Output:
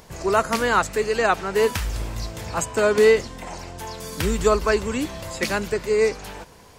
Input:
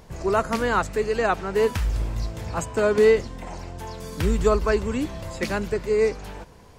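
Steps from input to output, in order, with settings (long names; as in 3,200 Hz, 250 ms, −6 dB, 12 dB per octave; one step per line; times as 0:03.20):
spectral tilt +1.5 dB per octave
0:03.84–0:04.40: surface crackle 25 per second −41 dBFS
level +3 dB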